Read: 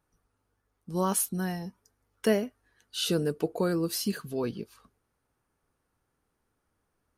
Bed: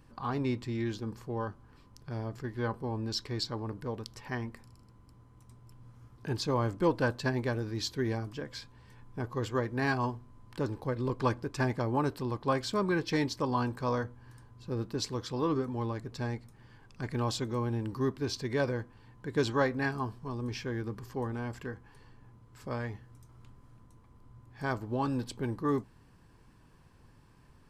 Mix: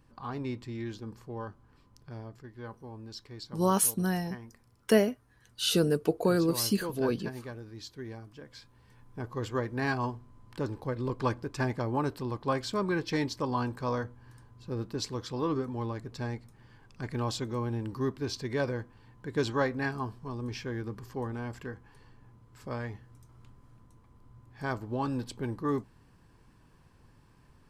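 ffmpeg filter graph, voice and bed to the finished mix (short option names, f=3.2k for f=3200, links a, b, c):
-filter_complex "[0:a]adelay=2650,volume=2dB[a];[1:a]volume=5.5dB,afade=t=out:st=2.02:d=0.43:silence=0.501187,afade=t=in:st=8.32:d=1.2:silence=0.334965[b];[a][b]amix=inputs=2:normalize=0"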